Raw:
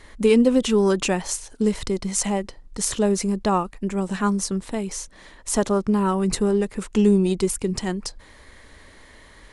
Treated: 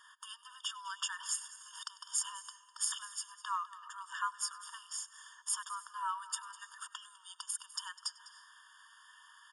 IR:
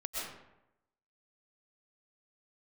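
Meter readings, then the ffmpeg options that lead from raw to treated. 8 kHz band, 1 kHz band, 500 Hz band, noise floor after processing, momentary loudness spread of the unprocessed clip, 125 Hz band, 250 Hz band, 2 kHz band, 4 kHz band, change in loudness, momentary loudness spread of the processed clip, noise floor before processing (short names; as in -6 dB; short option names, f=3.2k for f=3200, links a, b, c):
-9.0 dB, -11.5 dB, under -40 dB, -63 dBFS, 11 LU, under -40 dB, under -40 dB, -11.0 dB, -8.5 dB, -17.5 dB, 19 LU, -49 dBFS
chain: -filter_complex "[0:a]bandreject=f=60:t=h:w=6,bandreject=f=120:t=h:w=6,bandreject=f=180:t=h:w=6,bandreject=f=240:t=h:w=6,acompressor=threshold=-21dB:ratio=6,aecho=1:1:202:0.133,asplit=2[a][b];[1:a]atrim=start_sample=2205,asetrate=28665,aresample=44100,adelay=98[c];[b][c]afir=irnorm=-1:irlink=0,volume=-22dB[d];[a][d]amix=inputs=2:normalize=0,afftfilt=real='re*eq(mod(floor(b*sr/1024/920),2),1)':imag='im*eq(mod(floor(b*sr/1024/920),2),1)':win_size=1024:overlap=0.75,volume=-4.5dB"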